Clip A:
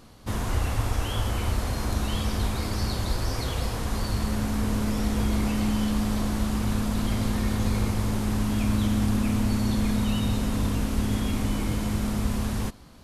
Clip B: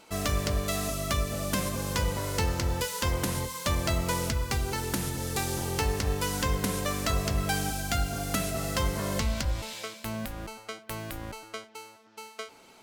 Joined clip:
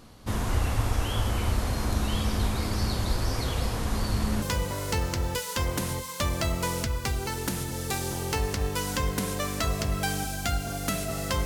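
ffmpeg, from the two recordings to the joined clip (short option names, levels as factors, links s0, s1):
-filter_complex "[0:a]apad=whole_dur=11.45,atrim=end=11.45,atrim=end=4.422[s0];[1:a]atrim=start=1.878:end=8.91[s1];[s0][s1]acrossfade=d=0.004:c1=hsin:c2=hsin"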